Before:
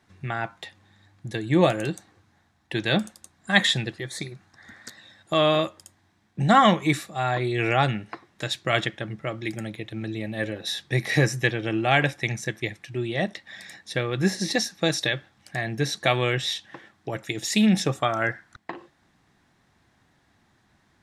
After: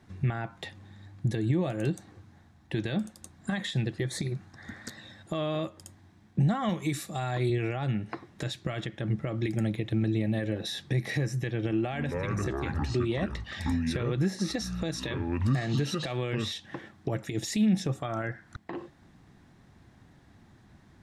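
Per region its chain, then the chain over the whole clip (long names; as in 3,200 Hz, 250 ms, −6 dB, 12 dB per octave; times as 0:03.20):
0:06.69–0:07.50: high-pass filter 54 Hz + high-shelf EQ 3,800 Hz +11.5 dB
0:11.71–0:16.52: low-shelf EQ 75 Hz −11 dB + delay with pitch and tempo change per echo 210 ms, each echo −6 semitones, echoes 2, each echo −6 dB
whole clip: downward compressor 4 to 1, threshold −32 dBFS; brickwall limiter −25.5 dBFS; low-shelf EQ 460 Hz +11 dB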